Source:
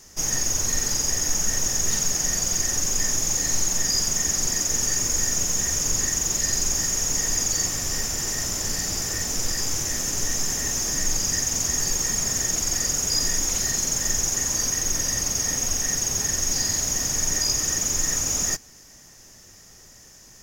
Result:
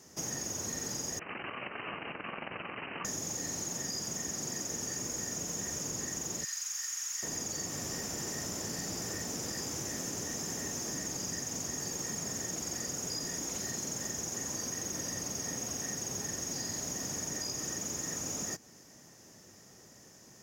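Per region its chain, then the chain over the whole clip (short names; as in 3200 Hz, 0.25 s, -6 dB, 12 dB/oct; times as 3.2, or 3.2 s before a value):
1.19–3.05 self-modulated delay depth 0.25 ms + HPF 310 Hz 6 dB/oct + inverted band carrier 3000 Hz
6.44–7.23 HPF 1300 Hz 24 dB/oct + overloaded stage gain 15.5 dB
whole clip: HPF 150 Hz 12 dB/oct; tilt shelf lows +5 dB; compressor, threshold -30 dBFS; gain -4 dB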